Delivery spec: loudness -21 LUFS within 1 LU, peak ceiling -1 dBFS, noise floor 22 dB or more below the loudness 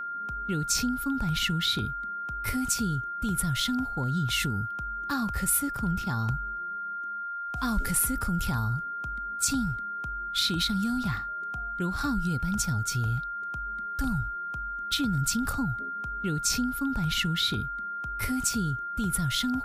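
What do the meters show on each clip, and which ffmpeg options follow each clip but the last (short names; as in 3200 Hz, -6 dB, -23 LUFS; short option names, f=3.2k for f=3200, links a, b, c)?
steady tone 1400 Hz; tone level -32 dBFS; loudness -29.0 LUFS; peak -15.0 dBFS; loudness target -21.0 LUFS
-> -af "bandreject=f=1.4k:w=30"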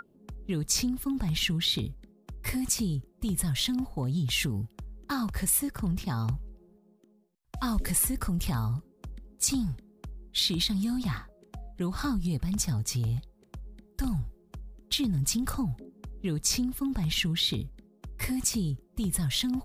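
steady tone none; loudness -29.5 LUFS; peak -16.0 dBFS; loudness target -21.0 LUFS
-> -af "volume=8.5dB"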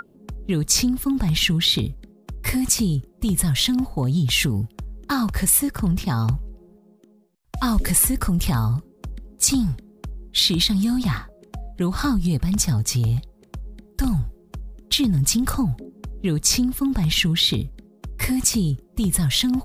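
loudness -21.0 LUFS; peak -7.5 dBFS; noise floor -54 dBFS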